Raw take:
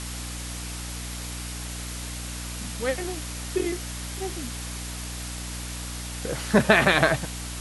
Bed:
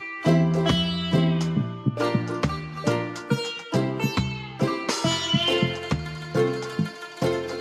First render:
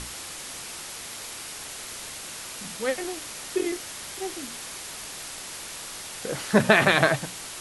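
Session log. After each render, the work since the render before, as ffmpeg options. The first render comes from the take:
-af "bandreject=f=60:t=h:w=6,bandreject=f=120:t=h:w=6,bandreject=f=180:t=h:w=6,bandreject=f=240:t=h:w=6,bandreject=f=300:t=h:w=6"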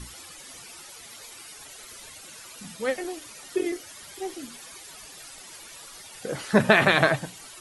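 -af "afftdn=nr=13:nf=-39"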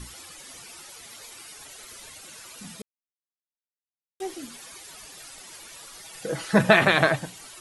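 -filter_complex "[0:a]asettb=1/sr,asplit=3[a][b][c];[a]atrim=end=6.024[d];[b]atrim=start=6.02:end=6.79,asetpts=PTS-STARTPTS,afade=t=in:d=0.004:c=qsin,afade=t=out:st=0.766:d=0.004:c=qsin,aecho=1:1:6.1:0.51,atrim=end_sample=33957[e];[c]atrim=start=6.786[f];[d][e]acrossfade=d=0.004:c1=hsin:c2=qsin[g];[g][f]acrossfade=d=0.004:c1=qsin:c2=hsin,asplit=3[h][i][j];[h]atrim=end=2.82,asetpts=PTS-STARTPTS,afade=t=out:st=2.816:d=0.004:c=hsin[k];[i]atrim=start=2.82:end=4.2,asetpts=PTS-STARTPTS,volume=0[l];[j]atrim=start=4.2,asetpts=PTS-STARTPTS,afade=t=in:d=0.004:c=hsin[m];[k][l][m]concat=n=3:v=0:a=1"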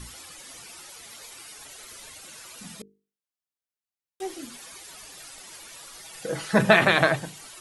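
-af "bandreject=f=50:t=h:w=6,bandreject=f=100:t=h:w=6,bandreject=f=150:t=h:w=6,bandreject=f=200:t=h:w=6,bandreject=f=250:t=h:w=6,bandreject=f=300:t=h:w=6,bandreject=f=350:t=h:w=6,bandreject=f=400:t=h:w=6,bandreject=f=450:t=h:w=6"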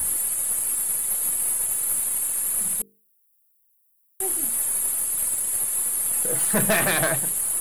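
-af "aexciter=amount=16:drive=8.9:freq=8.6k,aeval=exprs='(tanh(5.62*val(0)+0.3)-tanh(0.3))/5.62':c=same"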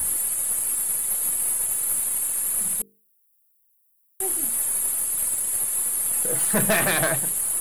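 -af anull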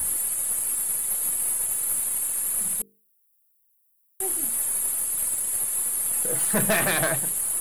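-af "volume=-1.5dB"

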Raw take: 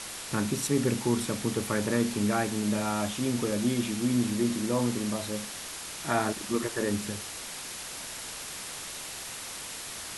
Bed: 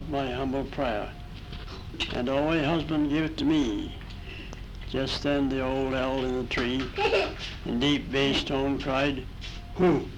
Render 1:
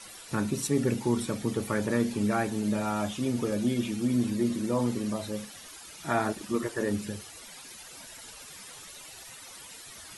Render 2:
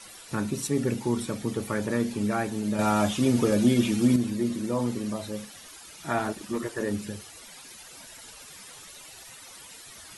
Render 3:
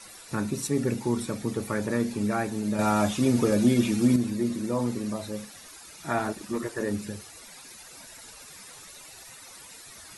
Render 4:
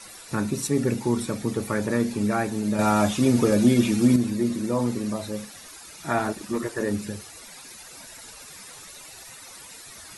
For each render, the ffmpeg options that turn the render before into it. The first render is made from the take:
-af "afftdn=nr=13:nf=-40"
-filter_complex "[0:a]asettb=1/sr,asplit=3[a][b][c];[a]atrim=end=6.184[d];[b]atrim=start=6.18:end=6.8,asetpts=PTS-STARTPTS,afade=t=in:d=0.004:c=qsin,afade=t=out:st=0.616:d=0.004:c=qsin,volume=22.5dB,asoftclip=hard,volume=-22.5dB[e];[c]atrim=start=6.796[f];[d][e]acrossfade=d=0.004:c1=hsin:c2=qsin[g];[g][f]acrossfade=d=0.004:c1=qsin:c2=hsin,asplit=3[h][i][j];[h]atrim=end=2.792[k];[i]atrim=start=2.788:end=4.162,asetpts=PTS-STARTPTS,volume=6.5dB[l];[j]atrim=start=4.158[m];[k][l]acrossfade=d=0.004:c1=hsin:c2=hsin[n];[n][m]acrossfade=d=0.004:c1=hsin:c2=hsin"
-af "equalizer=f=3.1k:w=6.6:g=-6.5"
-af "volume=3dB"

